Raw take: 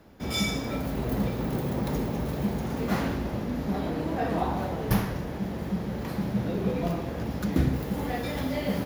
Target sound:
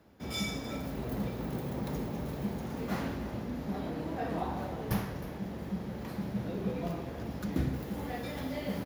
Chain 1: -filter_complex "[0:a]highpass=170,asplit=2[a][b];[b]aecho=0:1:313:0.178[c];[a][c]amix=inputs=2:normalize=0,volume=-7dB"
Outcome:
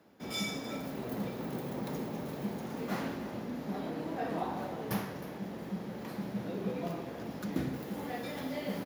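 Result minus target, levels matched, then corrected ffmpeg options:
125 Hz band -3.5 dB
-filter_complex "[0:a]highpass=45,asplit=2[a][b];[b]aecho=0:1:313:0.178[c];[a][c]amix=inputs=2:normalize=0,volume=-7dB"

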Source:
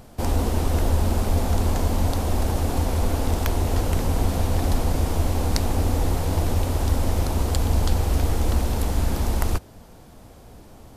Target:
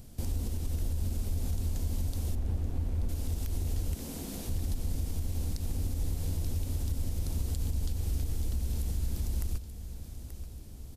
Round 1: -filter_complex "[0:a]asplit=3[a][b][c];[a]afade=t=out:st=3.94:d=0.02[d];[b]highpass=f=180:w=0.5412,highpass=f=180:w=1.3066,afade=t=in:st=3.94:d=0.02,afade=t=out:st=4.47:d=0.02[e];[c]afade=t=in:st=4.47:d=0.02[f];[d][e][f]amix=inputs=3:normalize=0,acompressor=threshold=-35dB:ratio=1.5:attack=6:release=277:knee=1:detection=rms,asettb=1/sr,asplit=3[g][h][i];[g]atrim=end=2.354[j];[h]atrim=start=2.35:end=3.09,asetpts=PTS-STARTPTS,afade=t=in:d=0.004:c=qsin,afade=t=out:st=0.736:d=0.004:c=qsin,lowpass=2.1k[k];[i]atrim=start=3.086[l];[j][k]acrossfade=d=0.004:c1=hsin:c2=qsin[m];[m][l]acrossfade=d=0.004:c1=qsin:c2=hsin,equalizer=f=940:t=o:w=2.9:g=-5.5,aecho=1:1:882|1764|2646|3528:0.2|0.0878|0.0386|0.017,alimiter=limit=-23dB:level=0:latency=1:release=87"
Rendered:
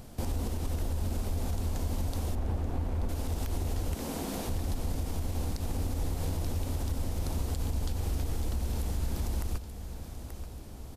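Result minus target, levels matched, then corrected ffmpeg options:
1000 Hz band +10.0 dB
-filter_complex "[0:a]asplit=3[a][b][c];[a]afade=t=out:st=3.94:d=0.02[d];[b]highpass=f=180:w=0.5412,highpass=f=180:w=1.3066,afade=t=in:st=3.94:d=0.02,afade=t=out:st=4.47:d=0.02[e];[c]afade=t=in:st=4.47:d=0.02[f];[d][e][f]amix=inputs=3:normalize=0,acompressor=threshold=-35dB:ratio=1.5:attack=6:release=277:knee=1:detection=rms,asettb=1/sr,asplit=3[g][h][i];[g]atrim=end=2.354[j];[h]atrim=start=2.35:end=3.09,asetpts=PTS-STARTPTS,afade=t=in:d=0.004:c=qsin,afade=t=out:st=0.736:d=0.004:c=qsin,lowpass=2.1k[k];[i]atrim=start=3.086[l];[j][k]acrossfade=d=0.004:c1=hsin:c2=qsin[m];[m][l]acrossfade=d=0.004:c1=qsin:c2=hsin,equalizer=f=940:t=o:w=2.9:g=-17.5,aecho=1:1:882|1764|2646|3528:0.2|0.0878|0.0386|0.017,alimiter=limit=-23dB:level=0:latency=1:release=87"

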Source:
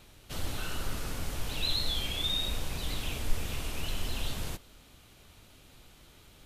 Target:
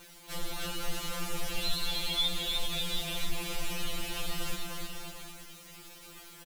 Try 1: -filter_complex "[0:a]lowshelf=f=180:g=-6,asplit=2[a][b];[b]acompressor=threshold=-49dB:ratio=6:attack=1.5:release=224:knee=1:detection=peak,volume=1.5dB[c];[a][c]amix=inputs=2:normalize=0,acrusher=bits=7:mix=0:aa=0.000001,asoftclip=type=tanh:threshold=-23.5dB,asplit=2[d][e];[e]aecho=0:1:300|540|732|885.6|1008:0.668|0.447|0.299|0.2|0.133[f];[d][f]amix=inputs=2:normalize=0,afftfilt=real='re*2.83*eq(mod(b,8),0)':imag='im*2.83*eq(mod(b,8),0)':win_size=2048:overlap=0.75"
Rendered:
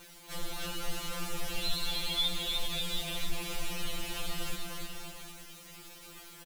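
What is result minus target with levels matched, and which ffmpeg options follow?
compressor: peak gain reduction +7 dB
-filter_complex "[0:a]lowshelf=f=180:g=-6,asplit=2[a][b];[b]acompressor=threshold=-40.5dB:ratio=6:attack=1.5:release=224:knee=1:detection=peak,volume=1.5dB[c];[a][c]amix=inputs=2:normalize=0,acrusher=bits=7:mix=0:aa=0.000001,asoftclip=type=tanh:threshold=-23.5dB,asplit=2[d][e];[e]aecho=0:1:300|540|732|885.6|1008:0.668|0.447|0.299|0.2|0.133[f];[d][f]amix=inputs=2:normalize=0,afftfilt=real='re*2.83*eq(mod(b,8),0)':imag='im*2.83*eq(mod(b,8),0)':win_size=2048:overlap=0.75"

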